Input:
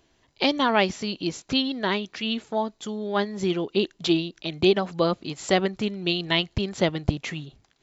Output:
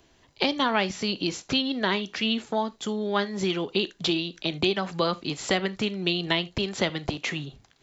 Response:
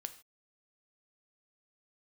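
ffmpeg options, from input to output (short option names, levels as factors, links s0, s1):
-filter_complex "[0:a]acrossover=split=220|990|6600[s0][s1][s2][s3];[s0]acompressor=threshold=0.01:ratio=4[s4];[s1]acompressor=threshold=0.0251:ratio=4[s5];[s2]acompressor=threshold=0.0355:ratio=4[s6];[s3]acompressor=threshold=0.00251:ratio=4[s7];[s4][s5][s6][s7]amix=inputs=4:normalize=0,asplit=2[s8][s9];[1:a]atrim=start_sample=2205,afade=t=out:st=0.13:d=0.01,atrim=end_sample=6174[s10];[s9][s10]afir=irnorm=-1:irlink=0,volume=1.88[s11];[s8][s11]amix=inputs=2:normalize=0,volume=0.708"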